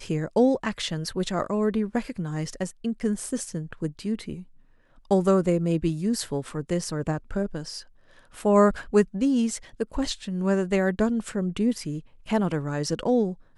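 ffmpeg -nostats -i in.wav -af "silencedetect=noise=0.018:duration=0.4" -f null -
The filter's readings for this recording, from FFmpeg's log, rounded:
silence_start: 4.41
silence_end: 5.11 | silence_duration: 0.70
silence_start: 7.81
silence_end: 8.35 | silence_duration: 0.55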